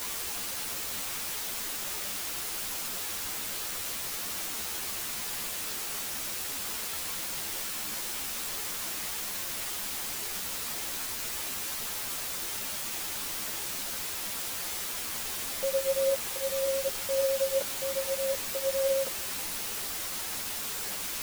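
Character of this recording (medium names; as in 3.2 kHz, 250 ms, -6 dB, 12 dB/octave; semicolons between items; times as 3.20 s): tremolo saw up 0.62 Hz, depth 55%; a quantiser's noise floor 6-bit, dither triangular; a shimmering, thickened sound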